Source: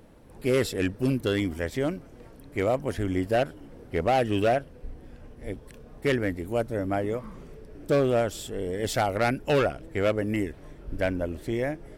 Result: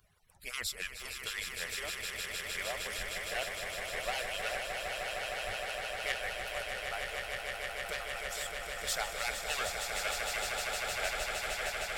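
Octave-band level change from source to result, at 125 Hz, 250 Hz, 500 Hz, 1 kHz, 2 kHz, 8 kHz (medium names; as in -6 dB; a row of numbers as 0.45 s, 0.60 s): -22.0 dB, -28.5 dB, -15.0 dB, -8.0 dB, 0.0 dB, +5.0 dB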